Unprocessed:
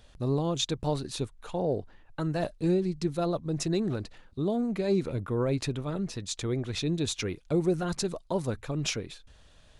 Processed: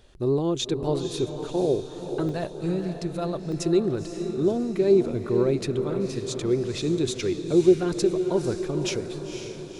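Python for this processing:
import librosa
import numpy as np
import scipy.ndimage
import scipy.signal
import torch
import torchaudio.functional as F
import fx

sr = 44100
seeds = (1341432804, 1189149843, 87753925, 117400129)

y = fx.peak_eq(x, sr, hz=370.0, db=fx.steps((0.0, 12.5), (2.29, -2.5), (3.52, 11.0)), octaves=0.43)
y = fx.echo_diffused(y, sr, ms=510, feedback_pct=53, wet_db=-8.0)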